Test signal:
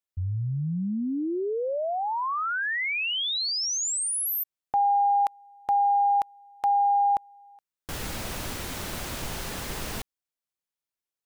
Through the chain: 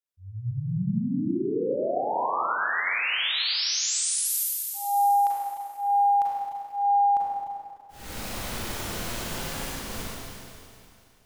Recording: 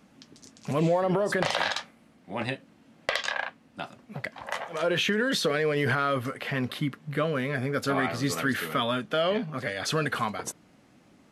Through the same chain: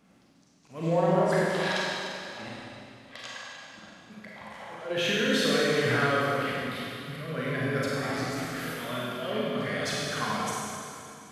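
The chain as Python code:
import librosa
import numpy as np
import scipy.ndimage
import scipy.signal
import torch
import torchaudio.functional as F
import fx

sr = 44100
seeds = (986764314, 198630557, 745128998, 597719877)

y = fx.auto_swell(x, sr, attack_ms=265.0)
y = fx.rev_schroeder(y, sr, rt60_s=2.6, comb_ms=33, drr_db=-6.0)
y = y * 10.0 ** (-5.5 / 20.0)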